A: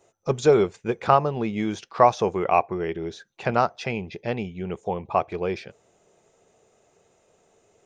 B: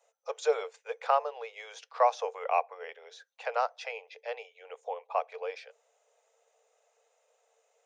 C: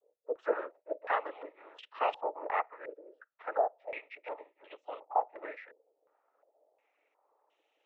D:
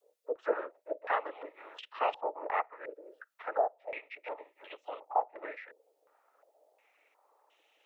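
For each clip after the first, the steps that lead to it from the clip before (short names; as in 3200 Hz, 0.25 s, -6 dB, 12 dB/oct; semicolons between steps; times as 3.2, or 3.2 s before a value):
Chebyshev high-pass 450 Hz, order 8; gain -7 dB
noise vocoder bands 12; stepped low-pass 2.8 Hz 490–3000 Hz; gain -6.5 dB
mismatched tape noise reduction encoder only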